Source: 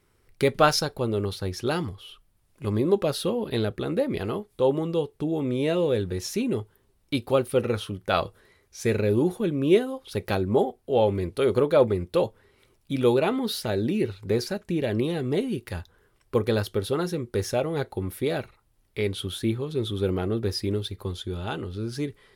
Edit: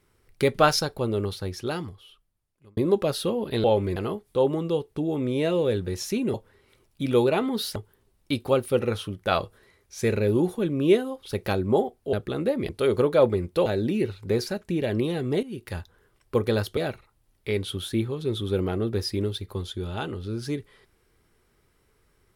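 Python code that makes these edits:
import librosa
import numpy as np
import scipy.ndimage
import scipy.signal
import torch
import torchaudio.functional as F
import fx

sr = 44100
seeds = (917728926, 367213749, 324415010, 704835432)

y = fx.edit(x, sr, fx.fade_out_span(start_s=1.2, length_s=1.57),
    fx.swap(start_s=3.64, length_s=0.56, other_s=10.95, other_length_s=0.32),
    fx.move(start_s=12.24, length_s=1.42, to_s=6.58),
    fx.fade_in_from(start_s=15.43, length_s=0.29, floor_db=-14.5),
    fx.cut(start_s=16.77, length_s=1.5), tone=tone)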